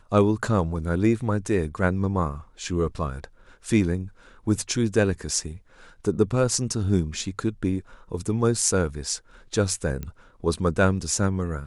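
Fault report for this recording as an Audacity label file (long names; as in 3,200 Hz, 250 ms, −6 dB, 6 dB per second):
10.030000	10.030000	click −19 dBFS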